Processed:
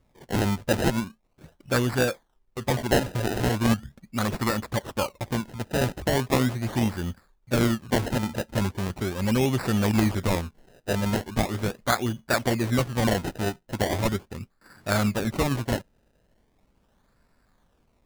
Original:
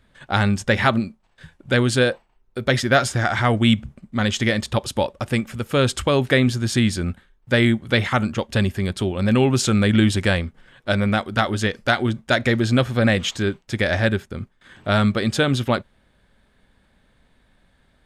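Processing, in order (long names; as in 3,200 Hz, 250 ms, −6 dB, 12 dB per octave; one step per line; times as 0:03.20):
low-pass filter 3,300 Hz 12 dB per octave
high-shelf EQ 2,600 Hz +7 dB
sample-and-hold swept by an LFO 27×, swing 100% 0.39 Hz
level −6 dB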